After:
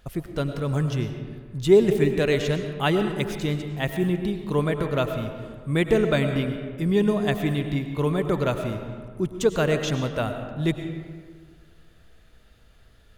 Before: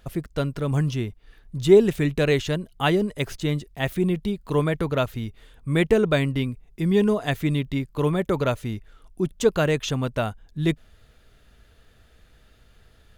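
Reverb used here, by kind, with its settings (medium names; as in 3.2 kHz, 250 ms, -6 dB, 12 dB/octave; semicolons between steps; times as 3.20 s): algorithmic reverb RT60 1.8 s, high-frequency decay 0.5×, pre-delay 65 ms, DRR 6.5 dB; trim -1.5 dB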